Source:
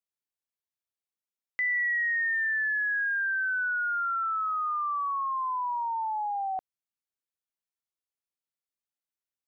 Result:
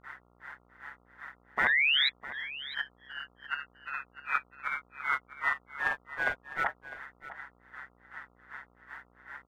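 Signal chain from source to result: spectral levelling over time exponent 0.4; peaking EQ 1.9 kHz +8 dB 2 oct; de-hum 94.75 Hz, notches 18; compressor with a negative ratio -26 dBFS, ratio -0.5; granulator 209 ms, grains 2.6 per s, pitch spread up and down by 0 st; painted sound rise, 1.58–2.09 s, 720–2200 Hz -22 dBFS; formant-preserving pitch shift +10.5 st; ring modulator 70 Hz; mains buzz 60 Hz, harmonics 23, -65 dBFS -3 dB/octave; on a send: delay 654 ms -15 dB

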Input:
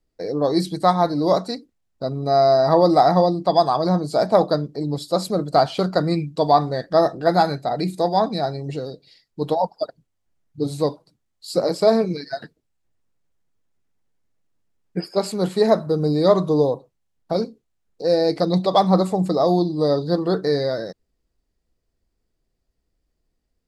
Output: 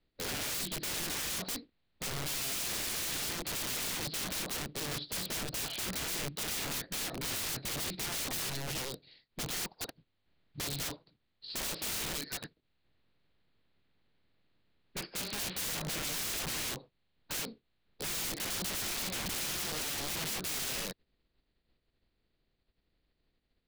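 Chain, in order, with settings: spectral contrast reduction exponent 0.65; peak limiter -10 dBFS, peak gain reduction 11.5 dB; elliptic low-pass 4.3 kHz, stop band 40 dB; integer overflow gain 27 dB; peaking EQ 1 kHz -6 dB 2.1 oct; trim -3 dB

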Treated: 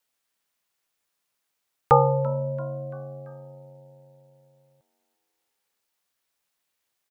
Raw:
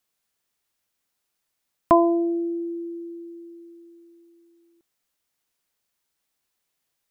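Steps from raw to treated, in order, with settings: tone controls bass -11 dB, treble -2 dB; ring modulator 200 Hz; frequency-shifting echo 338 ms, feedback 51%, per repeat +93 Hz, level -22 dB; trim +4 dB

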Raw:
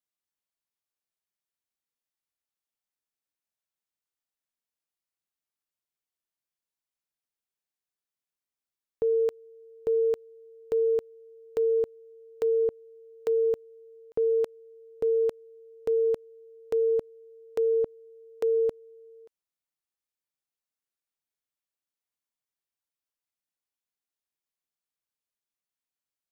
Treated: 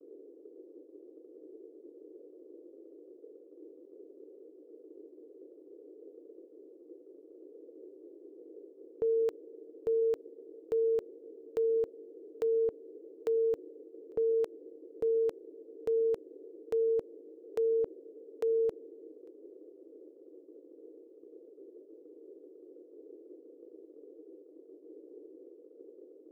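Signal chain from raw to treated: band noise 300–490 Hz -47 dBFS; expander -45 dBFS; trim -4.5 dB

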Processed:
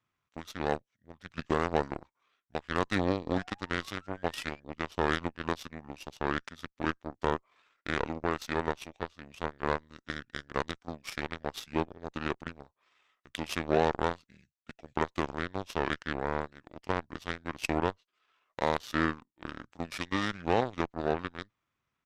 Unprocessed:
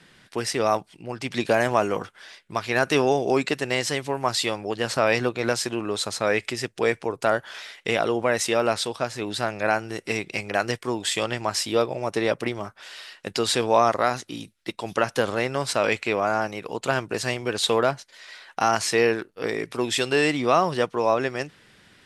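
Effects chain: painted sound rise, 3.34–4.60 s, 940–3500 Hz -34 dBFS; Chebyshev shaper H 3 -18 dB, 4 -28 dB, 7 -22 dB, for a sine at -5.5 dBFS; pitch shift -6.5 st; trim -5 dB

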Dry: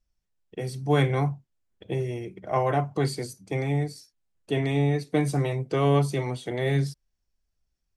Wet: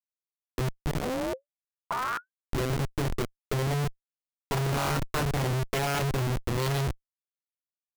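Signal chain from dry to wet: 3.91–5.09 s: sorted samples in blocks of 32 samples; peaking EQ 100 Hz +6.5 dB 0.49 oct; level-controlled noise filter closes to 440 Hz, open at -22.5 dBFS; integer overflow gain 16 dB; low-pass sweep 340 Hz -> 4.4 kHz, 3.09–6.47 s; dynamic bell 280 Hz, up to -6 dB, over -42 dBFS, Q 4.2; hum notches 50/100/150/200/250/300/350 Hz; Schmitt trigger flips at -27 dBFS; 1.00–2.44 s: ring modulator 340 Hz -> 1.9 kHz

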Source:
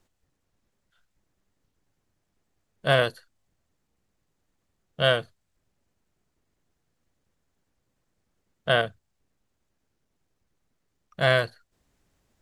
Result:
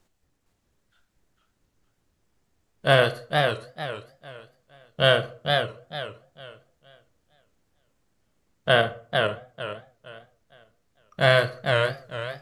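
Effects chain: reverberation RT60 0.45 s, pre-delay 15 ms, DRR 11 dB; modulated delay 456 ms, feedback 30%, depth 158 cents, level -4 dB; trim +2.5 dB

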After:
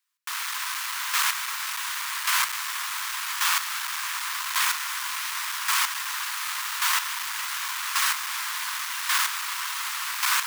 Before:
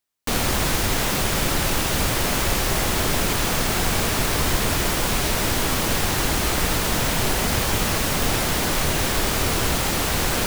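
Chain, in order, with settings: square wave that keeps the level; Chebyshev high-pass 1 kHz, order 5; square tremolo 0.88 Hz, depth 60%, duty 15%

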